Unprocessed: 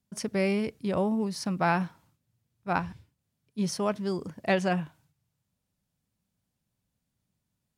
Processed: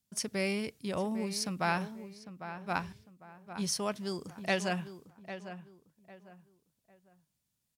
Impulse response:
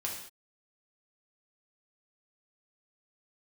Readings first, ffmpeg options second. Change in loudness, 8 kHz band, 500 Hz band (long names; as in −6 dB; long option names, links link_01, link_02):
−5.5 dB, +3.5 dB, −6.0 dB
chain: -filter_complex "[0:a]highshelf=frequency=2400:gain=11.5,asplit=2[link_01][link_02];[link_02]adelay=801,lowpass=frequency=2100:poles=1,volume=-11dB,asplit=2[link_03][link_04];[link_04]adelay=801,lowpass=frequency=2100:poles=1,volume=0.31,asplit=2[link_05][link_06];[link_06]adelay=801,lowpass=frequency=2100:poles=1,volume=0.31[link_07];[link_01][link_03][link_05][link_07]amix=inputs=4:normalize=0,volume=-7dB"